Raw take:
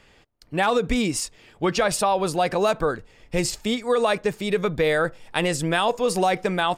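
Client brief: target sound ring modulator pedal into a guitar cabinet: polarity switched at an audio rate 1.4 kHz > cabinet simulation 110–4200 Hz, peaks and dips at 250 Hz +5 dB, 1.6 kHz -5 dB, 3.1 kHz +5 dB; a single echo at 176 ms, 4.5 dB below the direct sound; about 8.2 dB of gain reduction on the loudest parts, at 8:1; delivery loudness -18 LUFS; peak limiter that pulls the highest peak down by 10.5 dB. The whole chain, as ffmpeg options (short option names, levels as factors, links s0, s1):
-af "acompressor=threshold=0.0562:ratio=8,alimiter=limit=0.075:level=0:latency=1,aecho=1:1:176:0.596,aeval=exprs='val(0)*sgn(sin(2*PI*1400*n/s))':c=same,highpass=110,equalizer=f=250:t=q:w=4:g=5,equalizer=f=1600:t=q:w=4:g=-5,equalizer=f=3100:t=q:w=4:g=5,lowpass=f=4200:w=0.5412,lowpass=f=4200:w=1.3066,volume=4.73"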